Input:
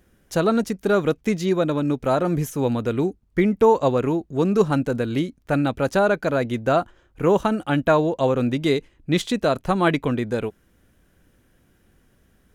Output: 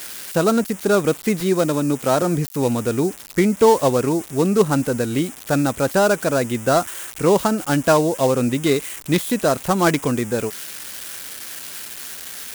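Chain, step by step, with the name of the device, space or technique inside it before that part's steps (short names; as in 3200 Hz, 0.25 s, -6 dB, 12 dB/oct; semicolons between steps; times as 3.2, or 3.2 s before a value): HPF 73 Hz 6 dB/oct; 1.4–2.22 HPF 96 Hz 24 dB/oct; budget class-D amplifier (switching dead time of 0.11 ms; switching spikes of -18 dBFS); gain +2.5 dB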